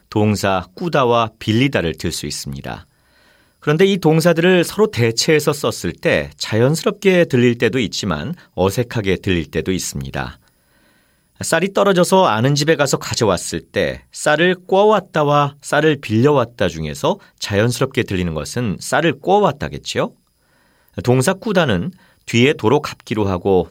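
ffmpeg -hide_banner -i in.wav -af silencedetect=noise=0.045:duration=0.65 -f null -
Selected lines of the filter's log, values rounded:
silence_start: 2.78
silence_end: 3.67 | silence_duration: 0.89
silence_start: 10.31
silence_end: 11.41 | silence_duration: 1.10
silence_start: 20.08
silence_end: 20.98 | silence_duration: 0.90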